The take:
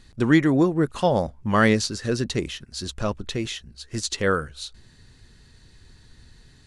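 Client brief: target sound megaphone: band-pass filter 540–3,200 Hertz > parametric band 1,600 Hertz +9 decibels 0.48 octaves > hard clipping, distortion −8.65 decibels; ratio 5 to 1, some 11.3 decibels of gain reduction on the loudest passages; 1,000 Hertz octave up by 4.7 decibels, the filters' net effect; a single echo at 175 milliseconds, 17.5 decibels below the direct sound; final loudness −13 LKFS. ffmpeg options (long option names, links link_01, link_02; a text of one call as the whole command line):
ffmpeg -i in.wav -af "equalizer=frequency=1000:width_type=o:gain=4,acompressor=threshold=-25dB:ratio=5,highpass=540,lowpass=3200,equalizer=frequency=1600:width_type=o:width=0.48:gain=9,aecho=1:1:175:0.133,asoftclip=type=hard:threshold=-25.5dB,volume=22dB" out.wav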